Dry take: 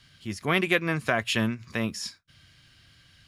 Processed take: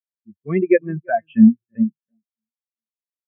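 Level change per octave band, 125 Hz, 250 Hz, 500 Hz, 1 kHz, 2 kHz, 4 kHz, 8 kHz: +4.0 dB, +14.0 dB, +9.0 dB, +4.5 dB, -5.5 dB, under -25 dB, under -40 dB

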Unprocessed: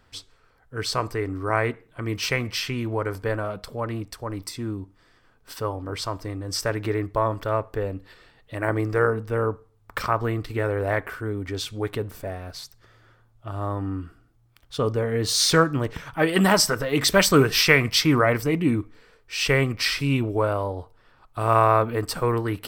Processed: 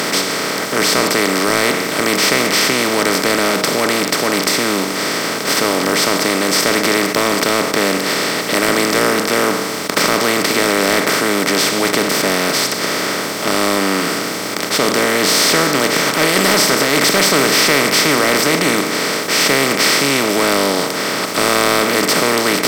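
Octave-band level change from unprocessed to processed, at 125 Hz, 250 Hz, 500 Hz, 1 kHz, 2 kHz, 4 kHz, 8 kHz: -2.0 dB, +9.0 dB, +8.5 dB, +9.5 dB, +12.5 dB, +13.0 dB, +14.5 dB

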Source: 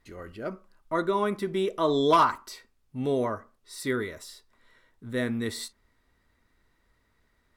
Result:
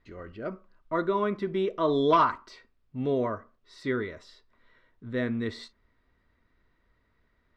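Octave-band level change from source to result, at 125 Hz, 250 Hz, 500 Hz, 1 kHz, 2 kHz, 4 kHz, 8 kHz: 0.0 dB, -0.5 dB, -0.5 dB, -1.5 dB, -1.5 dB, -5.0 dB, under -15 dB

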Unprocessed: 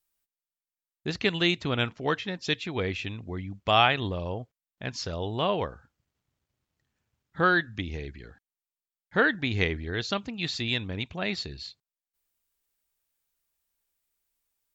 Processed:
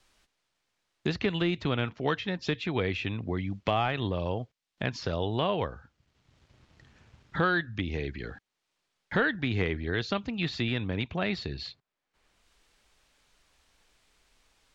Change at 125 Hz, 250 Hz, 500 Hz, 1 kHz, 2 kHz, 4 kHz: +1.0 dB, +0.5 dB, -1.0 dB, -4.0 dB, -3.5 dB, -5.5 dB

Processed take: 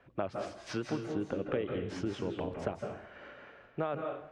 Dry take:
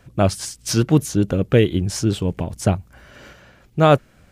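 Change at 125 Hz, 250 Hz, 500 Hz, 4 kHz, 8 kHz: -23.0 dB, -17.0 dB, -15.0 dB, -19.5 dB, -27.0 dB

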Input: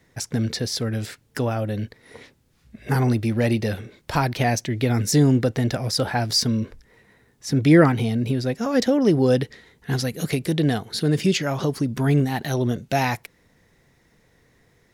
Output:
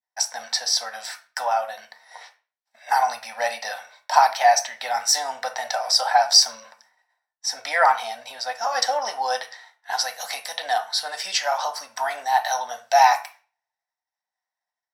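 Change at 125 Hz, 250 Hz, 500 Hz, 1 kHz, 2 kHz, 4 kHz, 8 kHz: under -40 dB, under -35 dB, -4.0 dB, +10.5 dB, +3.5 dB, +6.0 dB, +6.5 dB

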